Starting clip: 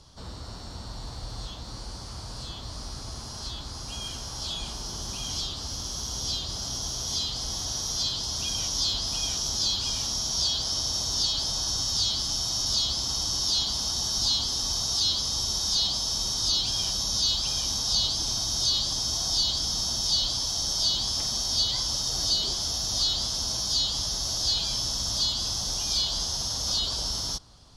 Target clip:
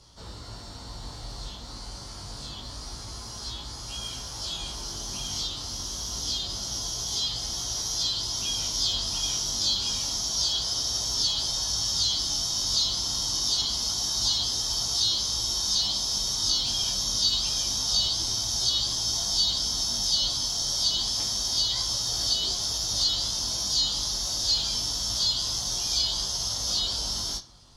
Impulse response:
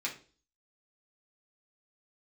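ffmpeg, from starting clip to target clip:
-filter_complex "[0:a]flanger=delay=18:depth=3.2:speed=0.27,asplit=2[link_01][link_02];[1:a]atrim=start_sample=2205,asetrate=38808,aresample=44100,highshelf=frequency=5700:gain=10.5[link_03];[link_02][link_03]afir=irnorm=-1:irlink=0,volume=-9dB[link_04];[link_01][link_04]amix=inputs=2:normalize=0"

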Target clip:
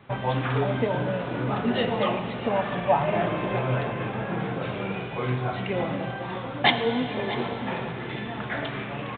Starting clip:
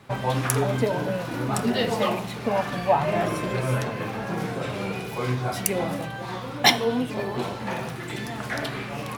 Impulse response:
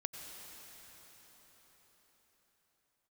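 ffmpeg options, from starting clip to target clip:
-filter_complex "[0:a]aecho=1:1:642:0.168,asplit=2[link_01][link_02];[1:a]atrim=start_sample=2205,asetrate=48510,aresample=44100[link_03];[link_02][link_03]afir=irnorm=-1:irlink=0,volume=1dB[link_04];[link_01][link_04]amix=inputs=2:normalize=0,aresample=8000,aresample=44100,volume=-6dB"

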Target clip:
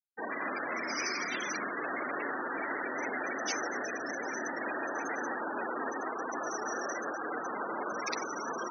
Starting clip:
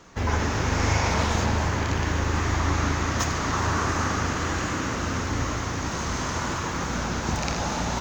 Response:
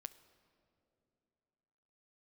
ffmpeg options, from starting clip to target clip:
-af "afftfilt=real='re*gte(hypot(re,im),0.0562)':imag='im*gte(hypot(re,im),0.0562)':win_size=1024:overlap=0.75,highpass=frequency=440:width=0.5412,highpass=frequency=440:width=1.3066,asetrate=40572,aresample=44100,areverse,acompressor=mode=upward:threshold=-47dB:ratio=2.5,areverse,afftfilt=real='re*lt(hypot(re,im),0.0708)':imag='im*lt(hypot(re,im),0.0708)':win_size=1024:overlap=0.75,volume=4.5dB"

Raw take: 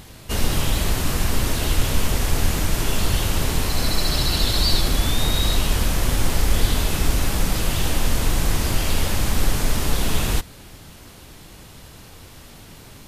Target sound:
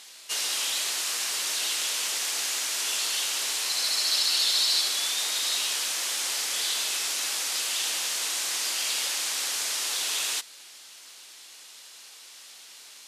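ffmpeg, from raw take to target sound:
ffmpeg -i in.wav -af "afftfilt=real='re*lt(hypot(re,im),0.316)':imag='im*lt(hypot(re,im),0.316)':win_size=1024:overlap=0.75,highpass=320,lowpass=6500,aderivative,volume=7.5dB" out.wav

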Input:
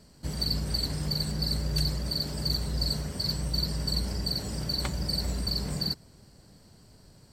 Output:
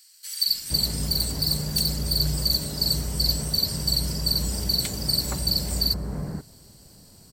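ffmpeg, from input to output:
ffmpeg -i in.wav -filter_complex "[0:a]acrossover=split=1700[link_01][link_02];[link_01]adelay=470[link_03];[link_03][link_02]amix=inputs=2:normalize=0,asettb=1/sr,asplit=3[link_04][link_05][link_06];[link_04]atrim=end=1.094[link_07];[link_05]atrim=start=1.09:end=2.19,asetpts=PTS-STARTPTS,afade=type=in:duration=0.004:curve=qsin,afade=type=out:start_time=1.096:duration=0.004:curve=qsin,volume=23.5dB,asoftclip=hard,volume=-23.5dB[link_08];[link_06]atrim=start=2.186[link_09];[link_07][link_08]acrossfade=duration=0.004:curve1=hsin:curve2=qsin[link_10];[link_10][link_09]acrossfade=duration=0.004:curve1=qsin:curve2=hsin,aemphasis=mode=production:type=50kf,volume=2.5dB" out.wav

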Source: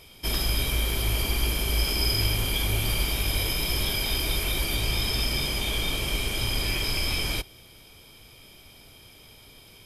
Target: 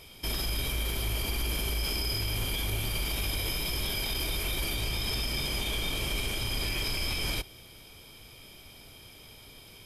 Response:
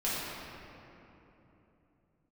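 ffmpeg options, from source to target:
-af "alimiter=limit=-22dB:level=0:latency=1:release=48"

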